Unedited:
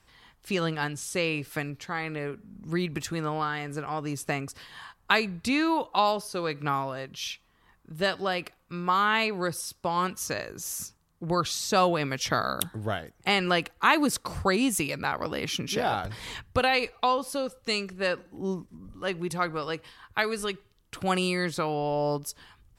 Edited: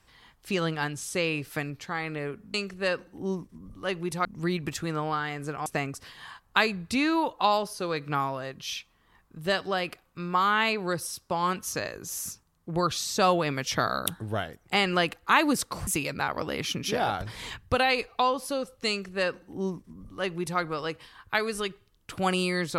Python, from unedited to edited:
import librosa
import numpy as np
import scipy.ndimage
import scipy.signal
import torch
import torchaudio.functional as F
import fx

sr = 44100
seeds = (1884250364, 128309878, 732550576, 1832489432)

y = fx.edit(x, sr, fx.cut(start_s=3.95, length_s=0.25),
    fx.cut(start_s=14.41, length_s=0.3),
    fx.duplicate(start_s=17.73, length_s=1.71, to_s=2.54), tone=tone)